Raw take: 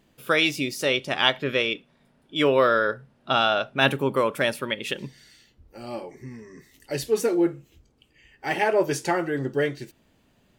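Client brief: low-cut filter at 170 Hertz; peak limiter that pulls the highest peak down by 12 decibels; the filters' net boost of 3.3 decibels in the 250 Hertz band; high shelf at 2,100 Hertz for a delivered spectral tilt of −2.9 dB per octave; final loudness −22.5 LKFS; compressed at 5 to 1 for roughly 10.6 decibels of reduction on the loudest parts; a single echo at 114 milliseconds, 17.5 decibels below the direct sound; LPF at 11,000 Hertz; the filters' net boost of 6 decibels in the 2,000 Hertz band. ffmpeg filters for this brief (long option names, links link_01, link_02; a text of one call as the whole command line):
ffmpeg -i in.wav -af "highpass=170,lowpass=11000,equalizer=frequency=250:width_type=o:gain=5,equalizer=frequency=2000:width_type=o:gain=3,highshelf=frequency=2100:gain=8,acompressor=threshold=-21dB:ratio=5,alimiter=limit=-18dB:level=0:latency=1,aecho=1:1:114:0.133,volume=7dB" out.wav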